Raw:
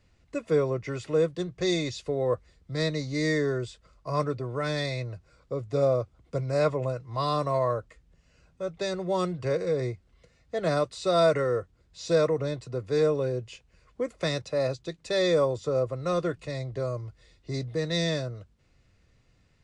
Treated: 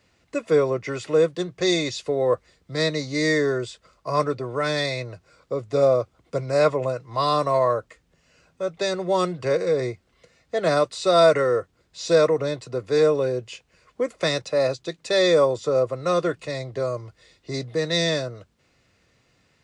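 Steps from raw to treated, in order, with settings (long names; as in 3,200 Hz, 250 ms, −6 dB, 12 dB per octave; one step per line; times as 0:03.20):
high-pass filter 290 Hz 6 dB per octave
level +7 dB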